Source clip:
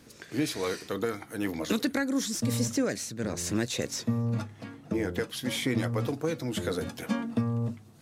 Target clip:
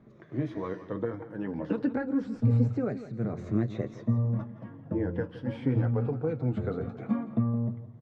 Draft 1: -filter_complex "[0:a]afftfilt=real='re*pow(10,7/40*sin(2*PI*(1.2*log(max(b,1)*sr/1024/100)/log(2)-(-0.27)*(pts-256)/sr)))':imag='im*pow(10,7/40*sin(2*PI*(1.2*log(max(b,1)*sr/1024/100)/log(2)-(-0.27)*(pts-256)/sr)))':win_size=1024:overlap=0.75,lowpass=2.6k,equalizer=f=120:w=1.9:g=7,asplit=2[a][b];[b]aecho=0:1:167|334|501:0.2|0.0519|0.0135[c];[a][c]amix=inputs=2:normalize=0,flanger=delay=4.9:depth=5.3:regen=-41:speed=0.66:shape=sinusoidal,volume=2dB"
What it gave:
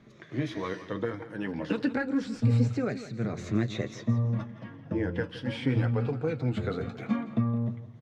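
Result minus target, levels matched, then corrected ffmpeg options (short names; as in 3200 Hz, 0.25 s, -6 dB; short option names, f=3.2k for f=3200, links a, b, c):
2000 Hz band +7.5 dB
-filter_complex "[0:a]afftfilt=real='re*pow(10,7/40*sin(2*PI*(1.2*log(max(b,1)*sr/1024/100)/log(2)-(-0.27)*(pts-256)/sr)))':imag='im*pow(10,7/40*sin(2*PI*(1.2*log(max(b,1)*sr/1024/100)/log(2)-(-0.27)*(pts-256)/sr)))':win_size=1024:overlap=0.75,lowpass=1.1k,equalizer=f=120:w=1.9:g=7,asplit=2[a][b];[b]aecho=0:1:167|334|501:0.2|0.0519|0.0135[c];[a][c]amix=inputs=2:normalize=0,flanger=delay=4.9:depth=5.3:regen=-41:speed=0.66:shape=sinusoidal,volume=2dB"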